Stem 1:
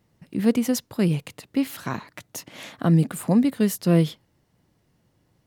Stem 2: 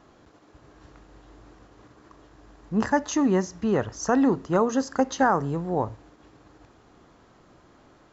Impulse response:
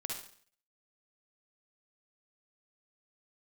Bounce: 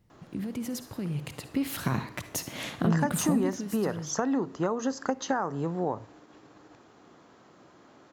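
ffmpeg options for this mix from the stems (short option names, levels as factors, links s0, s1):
-filter_complex "[0:a]lowshelf=f=140:g=11,alimiter=limit=0.141:level=0:latency=1:release=30,acompressor=threshold=0.0501:ratio=6,afade=t=in:st=1.01:d=0.69:silence=0.421697,afade=t=out:st=3.18:d=0.51:silence=0.251189,asplit=2[s0][s1];[s1]volume=0.473[s2];[1:a]highpass=150,acompressor=threshold=0.0562:ratio=6,adelay=100,volume=1.06[s3];[2:a]atrim=start_sample=2205[s4];[s2][s4]afir=irnorm=-1:irlink=0[s5];[s0][s3][s5]amix=inputs=3:normalize=0"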